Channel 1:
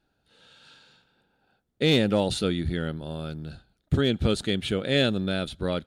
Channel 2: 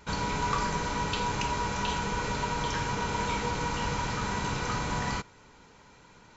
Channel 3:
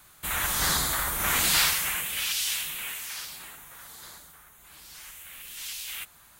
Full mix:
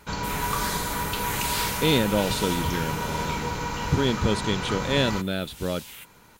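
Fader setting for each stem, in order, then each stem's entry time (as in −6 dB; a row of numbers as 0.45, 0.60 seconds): −0.5, +1.0, −6.5 decibels; 0.00, 0.00, 0.00 seconds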